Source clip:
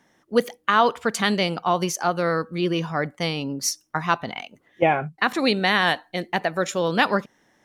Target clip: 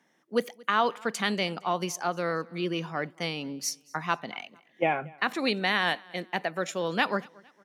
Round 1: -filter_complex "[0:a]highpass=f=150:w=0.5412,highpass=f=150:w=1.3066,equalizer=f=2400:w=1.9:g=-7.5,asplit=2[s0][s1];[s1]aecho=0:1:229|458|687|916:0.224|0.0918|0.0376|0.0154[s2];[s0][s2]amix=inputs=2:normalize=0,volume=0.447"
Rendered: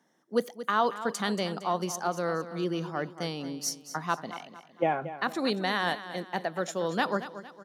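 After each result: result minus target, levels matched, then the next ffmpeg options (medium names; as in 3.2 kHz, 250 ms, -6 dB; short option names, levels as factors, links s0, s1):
echo-to-direct +12 dB; 2 kHz band -3.0 dB
-filter_complex "[0:a]highpass=f=150:w=0.5412,highpass=f=150:w=1.3066,equalizer=f=2400:w=1.9:g=-7.5,asplit=2[s0][s1];[s1]aecho=0:1:229|458:0.0562|0.0231[s2];[s0][s2]amix=inputs=2:normalize=0,volume=0.447"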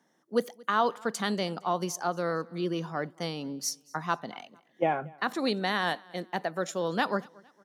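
2 kHz band -3.0 dB
-filter_complex "[0:a]highpass=f=150:w=0.5412,highpass=f=150:w=1.3066,equalizer=f=2400:w=1.9:g=3,asplit=2[s0][s1];[s1]aecho=0:1:229|458:0.0562|0.0231[s2];[s0][s2]amix=inputs=2:normalize=0,volume=0.447"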